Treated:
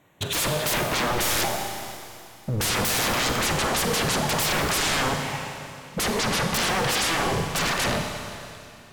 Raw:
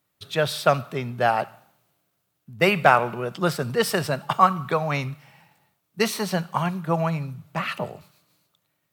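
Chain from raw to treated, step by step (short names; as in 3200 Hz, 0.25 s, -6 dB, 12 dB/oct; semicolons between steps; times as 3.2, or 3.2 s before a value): Wiener smoothing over 9 samples; soft clip -10.5 dBFS, distortion -14 dB; sample leveller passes 1; tone controls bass -3 dB, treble +5 dB; treble ducked by the level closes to 750 Hz, closed at -21 dBFS; notch 1300 Hz, Q 5.3; sine folder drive 17 dB, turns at -22 dBFS; Schroeder reverb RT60 2.7 s, combs from 31 ms, DRR 4 dB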